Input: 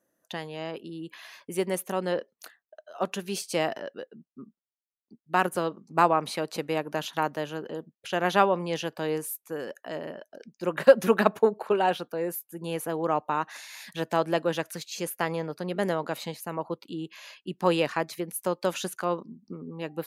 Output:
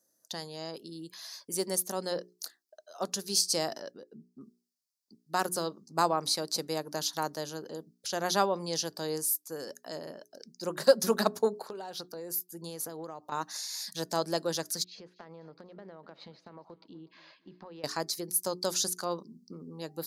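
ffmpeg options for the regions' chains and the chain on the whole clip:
-filter_complex "[0:a]asettb=1/sr,asplit=3[a][b][c];[a]atrim=end=3.914[d];[b]atrim=start=3.91:end=4.41,asetpts=PTS-STARTPTS,afade=t=in:d=0.004:c=qsin,afade=t=out:st=0.496:d=0.004:c=qsin,tiltshelf=f=720:g=5,acompressor=threshold=-38dB:ratio=5:attack=3.2:release=140:knee=1:detection=peak[e];[c]atrim=start=4.406[f];[d][e]acrossfade=d=0.004:c1=hsin:c2=qsin[g];[g][f]acrossfade=d=0.004:c1=qsin:c2=hsin,asettb=1/sr,asplit=3[h][i][j];[h]atrim=end=11.614[k];[i]atrim=start=11.61:end=13.32,asetpts=PTS-STARTPTS,afade=t=in:d=0.004:c=qsin,afade=t=out:st=1.706:d=0.004:c=qsin,equalizer=f=9.7k:w=1.1:g=-4.5,acompressor=threshold=-31dB:ratio=12:attack=3.2:release=140:knee=1:detection=peak[l];[j]atrim=start=13.316[m];[k][l]acrossfade=d=0.004:c1=hsin:c2=qsin[n];[n][m]acrossfade=d=0.004:c1=qsin:c2=hsin,asettb=1/sr,asplit=3[o][p][q];[o]atrim=end=14.844[r];[p]atrim=start=14.84:end=17.84,asetpts=PTS-STARTPTS,afade=t=in:d=0.004:c=qsin,afade=t=out:st=2.996:d=0.004:c=qsin,lowpass=f=2.7k:w=0.5412,lowpass=f=2.7k:w=1.3066,acompressor=threshold=-40dB:ratio=5:attack=3.2:release=140:knee=1:detection=peak,aecho=1:1:247|494|741:0.1|0.045|0.0202,atrim=end_sample=132300[s];[q]atrim=start=17.836[t];[r][s]acrossfade=d=0.004:c1=hsin:c2=qsin[u];[u][t]acrossfade=d=0.004:c1=qsin:c2=hsin,highshelf=f=3.6k:t=q:w=3:g=10.5,bandreject=f=60:t=h:w=6,bandreject=f=120:t=h:w=6,bandreject=f=180:t=h:w=6,bandreject=f=240:t=h:w=6,bandreject=f=300:t=h:w=6,bandreject=f=360:t=h:w=6,bandreject=f=420:t=h:w=6,volume=-5dB"

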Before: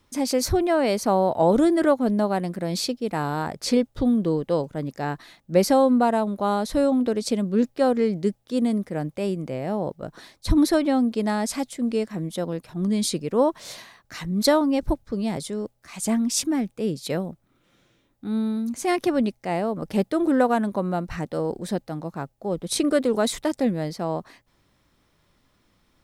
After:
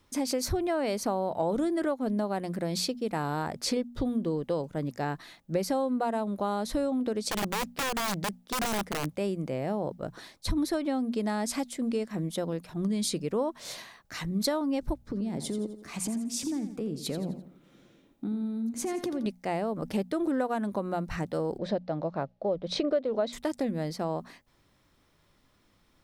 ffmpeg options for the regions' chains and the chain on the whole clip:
-filter_complex "[0:a]asettb=1/sr,asplit=3[a][b][c];[a]atrim=end=7.314[d];[b]atrim=start=7.31:end=9.12,asetpts=PTS-STARTPTS,afade=t=in:d=0.004:c=qsin,afade=t=out:st=1.806:d=0.004:c=qsin,acompressor=threshold=-22dB:ratio=6:attack=3.2:release=140:knee=1:detection=peak,aeval=exprs='(mod(13.3*val(0)+1,2)-1)/13.3':c=same[e];[c]atrim=start=9.116[f];[d][e]acrossfade=d=0.004:c1=hsin:c2=qsin[g];[g][f]acrossfade=d=0.004:c1=qsin:c2=hsin,asettb=1/sr,asplit=3[h][i][j];[h]atrim=end=15.004[k];[i]atrim=start=15:end=19.26,asetpts=PTS-STARTPTS,afade=t=in:d=0.004:c=qsin,afade=t=out:st=4.256:d=0.004:c=qsin,equalizer=f=240:w=0.62:g=10,acompressor=threshold=-27dB:ratio=10:attack=3.2:release=140:knee=1:detection=peak,aecho=1:1:85|170|255|340:0.282|0.116|0.0474|0.0194,atrim=end_sample=187866[l];[j]atrim=start=19.256[m];[k][l]acrossfade=d=0.004:c1=hsin:c2=qsin[n];[n][m]acrossfade=d=0.004:c1=qsin:c2=hsin,asettb=1/sr,asplit=3[o][p][q];[o]atrim=end=21.584[r];[p]atrim=start=21.58:end=23.33,asetpts=PTS-STARTPTS,afade=t=in:d=0.004:c=qsin,afade=t=out:st=1.746:d=0.004:c=qsin,lowpass=f=4.7k:w=0.5412,lowpass=f=4.7k:w=1.3066,equalizer=f=590:w=2.8:g=11[s];[q]atrim=start=23.326[t];[r][s]acrossfade=d=0.004:c1=hsin:c2=qsin[u];[u][t]acrossfade=d=0.004:c1=qsin:c2=hsin,bandreject=f=60:t=h:w=6,bandreject=f=120:t=h:w=6,bandreject=f=180:t=h:w=6,bandreject=f=240:t=h:w=6,acompressor=threshold=-25dB:ratio=4,volume=-1.5dB"

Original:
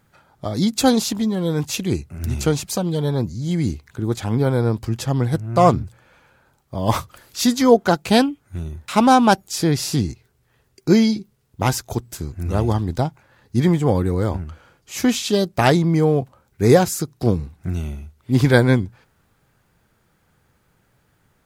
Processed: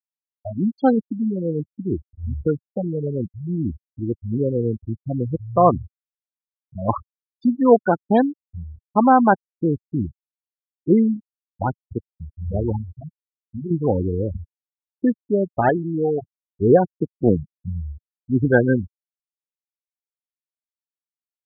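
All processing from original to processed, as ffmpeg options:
-filter_complex "[0:a]asettb=1/sr,asplit=3[a][b][c];[a]atrim=end=12.814[d];[b]atrim=start=12.81:end=13.71,asetpts=PTS-STARTPTS,afade=t=in:d=0.004:c=qsin,afade=t=out:st=0.896:d=0.004:c=qsin,asplit=2[e][f];[f]adelay=20,volume=-7.5dB[g];[e][g]amix=inputs=2:normalize=0,atrim=end_sample=39690,acompressor=threshold=-23dB:ratio=5:attack=3.2:release=140:knee=1:detection=peak[h];[c]atrim=start=13.706[i];[d][h]acrossfade=d=0.004:c1=hsin:c2=qsin[j];[j][i]acrossfade=d=0.004:c1=qsin:c2=hsin,asettb=1/sr,asplit=3[k][l][m];[k]atrim=end=15.694[n];[l]atrim=start=15.69:end=16.22,asetpts=PTS-STARTPTS,afade=t=in:d=0.004:c=qsin,afade=t=out:st=0.526:d=0.004:c=qsin,highpass=f=260:p=1,aemphasis=mode=production:type=75fm[o];[m]atrim=start=16.216[p];[n][o]acrossfade=d=0.004:c1=hsin:c2=qsin[q];[q][p]acrossfade=d=0.004:c1=qsin:c2=hsin,asettb=1/sr,asplit=3[r][s][t];[r]atrim=end=17.024[u];[s]atrim=start=17.02:end=17.54,asetpts=PTS-STARTPTS,afade=t=in:d=0.004:c=qsin,afade=t=out:st=0.516:d=0.004:c=qsin,highpass=110,acontrast=38[v];[t]atrim=start=17.536[w];[u][v]acrossfade=d=0.004:c1=hsin:c2=qsin[x];[x][w]acrossfade=d=0.004:c1=qsin:c2=hsin,afftfilt=real='re*gte(hypot(re,im),0.316)':imag='im*gte(hypot(re,im),0.316)':win_size=1024:overlap=0.75,lowpass=f=2.6k:w=0.5412,lowpass=f=2.6k:w=1.3066,equalizer=f=130:w=1.6:g=-6"

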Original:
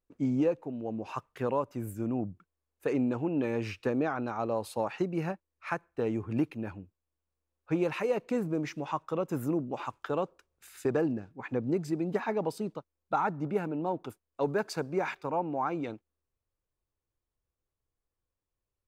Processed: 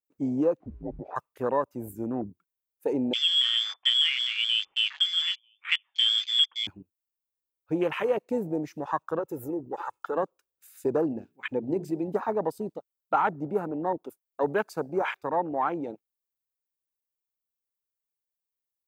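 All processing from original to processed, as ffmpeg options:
-filter_complex "[0:a]asettb=1/sr,asplit=3[a][b][c];[a]atrim=end=0.604[d];[b]atrim=start=0.6:end=1.16,asetpts=PTS-STARTPTS,afade=t=in:d=0.004:c=qsin,afade=t=out:st=0.556:d=0.004:c=qsin,aeval=exprs='val(0)+0.5*0.00355*sgn(val(0))':c=same,lowpass=1.3k,afreqshift=-180[e];[c]atrim=start=1.156[f];[d][e]acrossfade=d=0.004:c1=hsin:c2=qsin[g];[g][f]acrossfade=d=0.004:c1=qsin:c2=hsin,asettb=1/sr,asplit=3[h][i][j];[h]atrim=end=3.134[k];[i]atrim=start=3.13:end=6.67,asetpts=PTS-STARTPTS,afade=t=in:d=0.004:c=qsin,afade=t=out:st=3.536:d=0.004:c=qsin,aecho=1:1:943:0.075,atrim=end_sample=156114,lowpass=f=3.1k:t=q:w=0.5098,lowpass=f=3.1k:t=q:w=0.6013,lowpass=f=3.1k:t=q:w=0.9,lowpass=f=3.1k:t=q:w=2.563,afreqshift=-3600[l];[j]atrim=start=6.666[m];[k][l]acrossfade=d=0.004:c1=hsin:c2=qsin[n];[n][m]acrossfade=d=0.004:c1=qsin:c2=hsin,asettb=1/sr,asplit=3[o][p][q];[o]atrim=end=9.194[r];[p]atrim=start=9.19:end=10.16,asetpts=PTS-STARTPTS,afade=t=in:d=0.004:c=qsin,afade=t=out:st=0.966:d=0.004:c=qsin,acompressor=threshold=-39dB:ratio=1.5:attack=3.2:release=140:knee=1:detection=peak,aecho=1:1:2.3:0.67,atrim=end_sample=42777[s];[q]atrim=start=10.156[t];[r][s]acrossfade=d=0.004:c1=hsin:c2=qsin[u];[u][t]acrossfade=d=0.004:c1=qsin:c2=hsin,asettb=1/sr,asplit=3[v][w][x];[v]atrim=end=11.124[y];[w]atrim=start=11.12:end=12.08,asetpts=PTS-STARTPTS,afade=t=in:d=0.004:c=qsin,afade=t=out:st=0.956:d=0.004:c=qsin,equalizer=f=2.8k:w=1.4:g=6,bandreject=f=60:t=h:w=6,bandreject=f=120:t=h:w=6,bandreject=f=180:t=h:w=6,bandreject=f=240:t=h:w=6,bandreject=f=300:t=h:w=6,bandreject=f=360:t=h:w=6,bandreject=f=420:t=h:w=6,acompressor=mode=upward:threshold=-49dB:ratio=2.5:attack=3.2:release=140:knee=2.83:detection=peak[z];[x]atrim=start=12.076[aa];[y][z]acrossfade=d=0.004:c1=hsin:c2=qsin[ab];[ab][aa]acrossfade=d=0.004:c1=qsin:c2=hsin,aemphasis=mode=production:type=bsi,afwtdn=0.0141,adynamicequalizer=threshold=0.00562:dfrequency=1800:dqfactor=0.7:tfrequency=1800:tqfactor=0.7:attack=5:release=100:ratio=0.375:range=2:mode=cutabove:tftype=highshelf,volume=5dB"

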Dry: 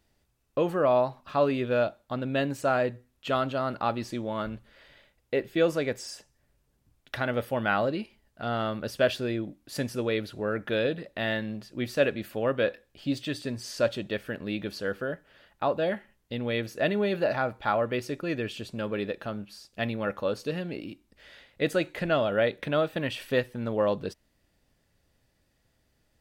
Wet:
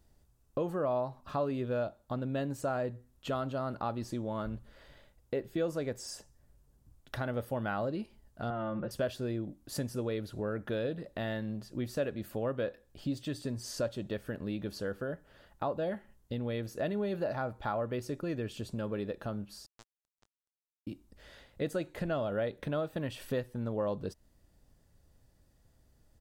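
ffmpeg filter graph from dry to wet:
-filter_complex "[0:a]asettb=1/sr,asplit=3[a][b][c];[a]atrim=end=8.504[d];[b]atrim=start=8.5:end=8.91,asetpts=PTS-STARTPTS,afade=t=in:d=0.004:c=qsin,afade=t=out:st=0.406:d=0.004:c=qsin,lowpass=f=2.6k:w=0.5412,lowpass=f=2.6k:w=1.3066,aecho=1:1:5.7:0.93,atrim=end_sample=18081,acompressor=threshold=-29dB:ratio=2.5:attack=3.2:release=140:knee=1:detection=peak[e];[c]atrim=start=8.906[f];[d][e]acrossfade=d=0.004:c1=hsin:c2=qsin[g];[g][f]acrossfade=d=0.004:c1=qsin:c2=hsin,asettb=1/sr,asplit=3[h][i][j];[h]atrim=end=19.664[k];[i]atrim=start=19.66:end=20.87,asetpts=PTS-STARTPTS,afade=t=in:d=0.004:c=qsin,afade=t=out:st=1.206:d=0.004:c=qsin,highpass=170,acompressor=threshold=-36dB:ratio=6:attack=3.2:release=140:knee=1:detection=peak,acrusher=bits=3:mix=0:aa=0.5[l];[j]atrim=start=20.866[m];[k][l]acrossfade=d=0.004:c1=hsin:c2=qsin[n];[n][m]acrossfade=d=0.004:c1=qsin:c2=hsin,lowshelf=f=120:g=9,acompressor=threshold=-36dB:ratio=2,firequalizer=gain_entry='entry(1000,0);entry(2300,-8);entry(3300,-5);entry(7000,1)':delay=0.05:min_phase=1"

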